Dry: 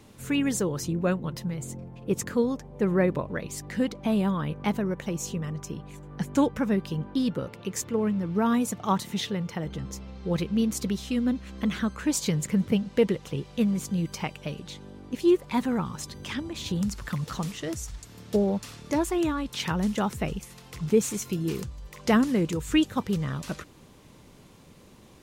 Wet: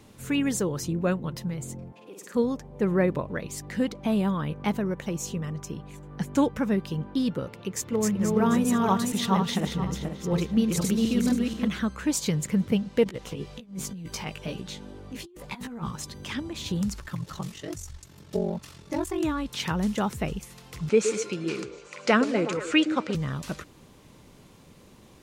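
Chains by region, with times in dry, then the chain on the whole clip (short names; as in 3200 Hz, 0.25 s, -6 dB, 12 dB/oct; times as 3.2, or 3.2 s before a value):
1.92–2.35 HPF 390 Hz + compressor 4:1, threshold -44 dBFS + flutter echo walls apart 8.7 m, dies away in 0.74 s
7.68–11.68 regenerating reverse delay 0.241 s, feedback 52%, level -1 dB + mismatched tape noise reduction decoder only
13.04–15.91 negative-ratio compressor -31 dBFS, ratio -0.5 + chorus 1.2 Hz, delay 15.5 ms, depth 3.3 ms
17–19.23 ring modulator 23 Hz + notch comb 240 Hz
20.89–23.15 speaker cabinet 230–8300 Hz, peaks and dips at 560 Hz +7 dB, 1400 Hz +9 dB, 2400 Hz +9 dB, 4400 Hz +4 dB + delay with a stepping band-pass 0.119 s, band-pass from 380 Hz, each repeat 0.7 oct, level -6 dB
whole clip: dry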